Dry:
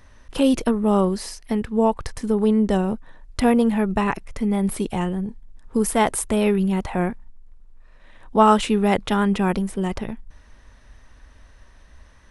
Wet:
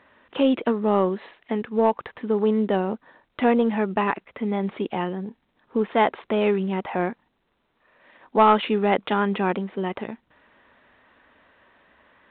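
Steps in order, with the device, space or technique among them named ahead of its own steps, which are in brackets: telephone (band-pass 270–3400 Hz; saturation -7.5 dBFS, distortion -20 dB; trim +1 dB; A-law 64 kbps 8 kHz)

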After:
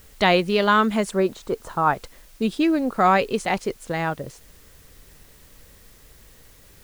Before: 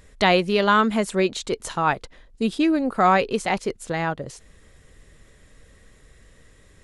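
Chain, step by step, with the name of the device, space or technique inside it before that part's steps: 1.11–1.93 s: resonant high shelf 1.8 kHz -8.5 dB, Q 1.5; plain cassette with noise reduction switched in (tape noise reduction on one side only decoder only; wow and flutter 21 cents; white noise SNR 30 dB)

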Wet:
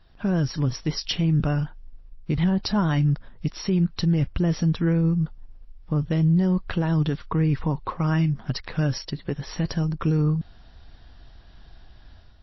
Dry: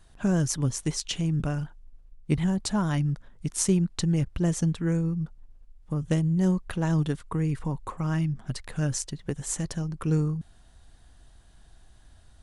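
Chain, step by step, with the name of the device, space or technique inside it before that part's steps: 7.64–9.53 s: bass shelf 110 Hz -4.5 dB; low-bitrate web radio (level rider gain up to 7 dB; peak limiter -13.5 dBFS, peak gain reduction 9 dB; MP3 24 kbps 16 kHz)

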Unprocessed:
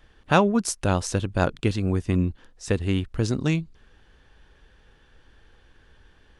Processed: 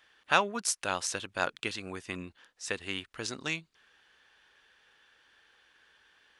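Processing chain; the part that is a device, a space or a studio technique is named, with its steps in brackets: filter by subtraction (in parallel: low-pass 2 kHz 12 dB/octave + polarity flip); on the sum: trim -2 dB

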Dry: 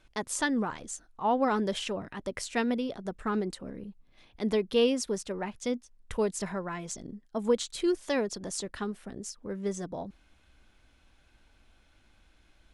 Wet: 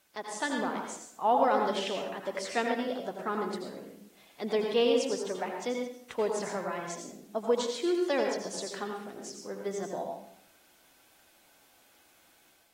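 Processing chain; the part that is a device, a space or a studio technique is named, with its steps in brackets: filmed off a television (band-pass 290–6900 Hz; peaking EQ 700 Hz +5 dB 0.51 oct; reverberation RT60 0.65 s, pre-delay 78 ms, DRR 2.5 dB; white noise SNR 32 dB; level rider gain up to 5 dB; trim -6.5 dB; AAC 48 kbps 44.1 kHz)

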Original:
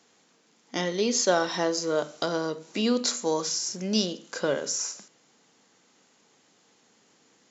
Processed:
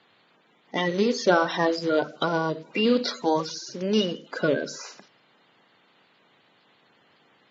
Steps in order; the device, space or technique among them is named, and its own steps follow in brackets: clip after many re-uploads (low-pass 4.2 kHz 24 dB/octave; coarse spectral quantiser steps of 30 dB); trim +4 dB

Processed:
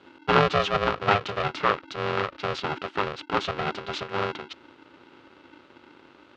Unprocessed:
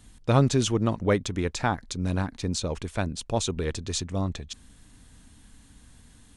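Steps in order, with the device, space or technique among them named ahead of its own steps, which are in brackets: 1.08–1.72 s: doubling 27 ms -8.5 dB; ring modulator pedal into a guitar cabinet (polarity switched at an audio rate 300 Hz; cabinet simulation 110–4100 Hz, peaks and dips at 210 Hz -9 dB, 1.3 kHz +9 dB, 2.7 kHz +4 dB)

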